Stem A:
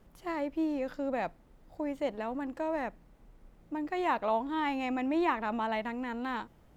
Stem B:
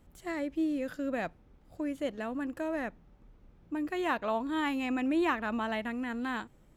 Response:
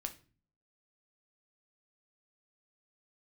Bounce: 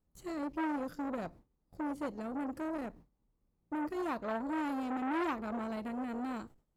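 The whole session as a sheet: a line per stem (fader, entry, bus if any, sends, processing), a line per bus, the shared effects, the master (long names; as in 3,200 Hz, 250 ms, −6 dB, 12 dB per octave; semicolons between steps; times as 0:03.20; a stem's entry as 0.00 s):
−7.0 dB, 0.00 s, send −10 dB, downward compressor, threshold −35 dBFS, peak gain reduction 11 dB
−2.5 dB, 0.00 s, send −10 dB, elliptic band-stop filter 1,200–4,100 Hz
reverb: on, RT60 0.40 s, pre-delay 6 ms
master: noise gate with hold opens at −45 dBFS; saturating transformer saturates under 1,100 Hz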